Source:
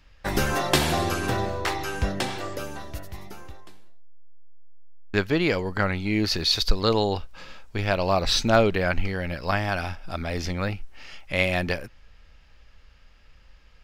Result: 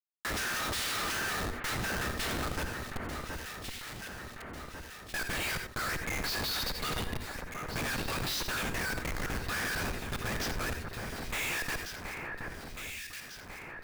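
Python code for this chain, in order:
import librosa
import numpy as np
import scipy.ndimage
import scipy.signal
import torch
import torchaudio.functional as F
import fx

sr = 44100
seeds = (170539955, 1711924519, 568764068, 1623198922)

y = fx.high_shelf(x, sr, hz=9900.0, db=11.0)
y = fx.pitch_keep_formants(y, sr, semitones=-7.0)
y = scipy.signal.sosfilt(scipy.signal.cheby1(6, 3, 1200.0, 'highpass', fs=sr, output='sos'), y)
y = fx.vibrato(y, sr, rate_hz=14.0, depth_cents=13.0)
y = fx.schmitt(y, sr, flips_db=-36.5)
y = fx.echo_alternate(y, sr, ms=723, hz=2000.0, feedback_pct=56, wet_db=-9.0)
y = fx.rev_gated(y, sr, seeds[0], gate_ms=110, shape='rising', drr_db=10.5)
y = fx.env_flatten(y, sr, amount_pct=50)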